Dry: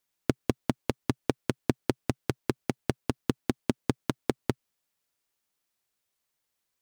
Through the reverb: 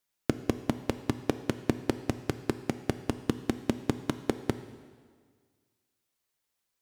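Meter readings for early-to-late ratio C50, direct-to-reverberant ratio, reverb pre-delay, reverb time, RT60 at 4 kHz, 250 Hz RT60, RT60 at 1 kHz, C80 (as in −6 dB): 12.5 dB, 11.0 dB, 5 ms, 1.7 s, 1.6 s, 1.7 s, 1.7 s, 13.5 dB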